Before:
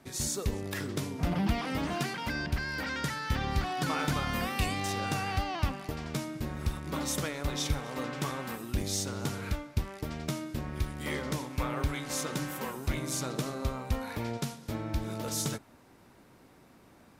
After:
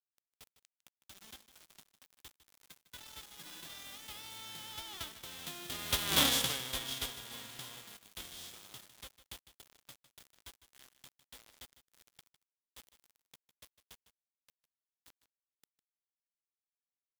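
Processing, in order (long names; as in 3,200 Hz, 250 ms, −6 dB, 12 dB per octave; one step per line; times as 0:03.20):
spectral envelope flattened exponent 0.3
source passing by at 0:06.18, 38 m/s, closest 3.8 metres
parametric band 3,400 Hz +11.5 dB 0.39 octaves
log-companded quantiser 4 bits
on a send: single-tap delay 154 ms −14 dB
on the sum: level +4.5 dB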